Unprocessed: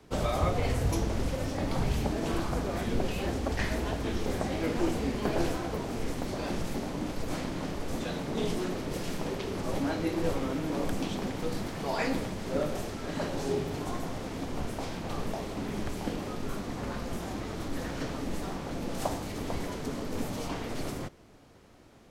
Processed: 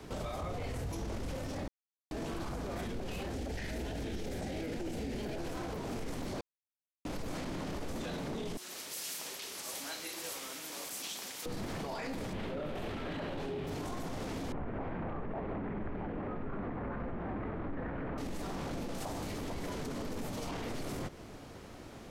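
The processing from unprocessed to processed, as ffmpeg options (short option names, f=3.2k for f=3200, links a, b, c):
-filter_complex "[0:a]asettb=1/sr,asplit=3[a][b][c];[a]atrim=end=3.354[d];[b]atrim=start=3.35:end=5.38,asetpts=PTS-STARTPTS,afade=t=in:d=0.004:c=qsin,afade=t=out:st=2.026:d=0.004:c=qsin,equalizer=f=1.1k:w=2.9:g=-12[e];[c]atrim=start=5.376[f];[d][e]acrossfade=d=0.004:c1=hsin:c2=qsin[g];[g][f]acrossfade=d=0.004:c1=qsin:c2=hsin,asettb=1/sr,asplit=3[h][i][j];[h]atrim=end=8.574[k];[i]atrim=start=8.57:end=11.46,asetpts=PTS-STARTPTS,afade=t=in:d=0.004:c=qsin,afade=t=out:st=2.886:d=0.004:c=qsin,aderivative[l];[j]atrim=start=11.456[m];[k][l]acrossfade=d=0.004:c1=hsin:c2=qsin[n];[n][m]acrossfade=d=0.004:c1=qsin:c2=hsin,asettb=1/sr,asplit=3[o][p][q];[o]atrim=end=12.334[r];[p]atrim=start=12.33:end=13.67,asetpts=PTS-STARTPTS,afade=t=in:d=0.004:c=qsin,afade=t=out:st=1.336:d=0.004:c=qsin,highshelf=f=4.4k:t=q:w=1.5:g=-10[s];[q]atrim=start=13.666[t];[r][s]acrossfade=d=0.004:c1=hsin:c2=qsin[u];[u][t]acrossfade=d=0.004:c1=qsin:c2=hsin,asettb=1/sr,asplit=3[v][w][x];[v]atrim=end=14.524[y];[w]atrim=start=14.52:end=18.18,asetpts=PTS-STARTPTS,afade=t=in:d=0.004:c=qsin,afade=t=out:st=3.656:d=0.004:c=qsin,lowpass=f=2k:w=0.5412,lowpass=f=2k:w=1.3066[z];[x]atrim=start=18.176[aa];[y][z]acrossfade=d=0.004:c1=hsin:c2=qsin[ab];[ab][aa]acrossfade=d=0.004:c1=qsin:c2=hsin,asplit=5[ac][ad][ae][af][ag];[ac]atrim=end=1.68,asetpts=PTS-STARTPTS,afade=t=out:st=1.676:d=0.004:c=hsin[ah];[ad]atrim=start=1.68:end=2.11,asetpts=PTS-STARTPTS,volume=0[ai];[ae]atrim=start=2.11:end=6.41,asetpts=PTS-STARTPTS,afade=t=in:d=0.004:c=hsin,afade=t=out:st=4.296:d=0.004:c=hsin[aj];[af]atrim=start=6.41:end=7.05,asetpts=PTS-STARTPTS,volume=0[ak];[ag]atrim=start=7.05,asetpts=PTS-STARTPTS,afade=t=in:d=0.004:c=hsin[al];[ah][ai][aj][ak][al]concat=n=5:v=0:a=1,acompressor=threshold=-38dB:ratio=6,alimiter=level_in=14.5dB:limit=-24dB:level=0:latency=1:release=16,volume=-14.5dB,volume=7.5dB"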